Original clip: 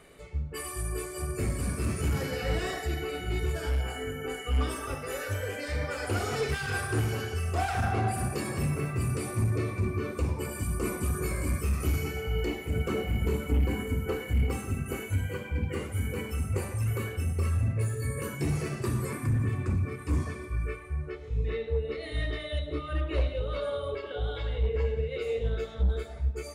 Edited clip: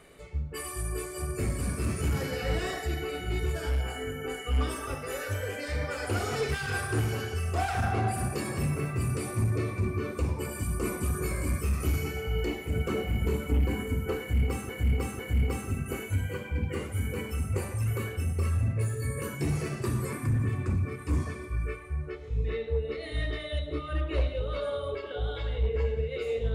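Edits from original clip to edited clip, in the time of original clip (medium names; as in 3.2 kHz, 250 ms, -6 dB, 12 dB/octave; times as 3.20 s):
14.19–14.69 s: loop, 3 plays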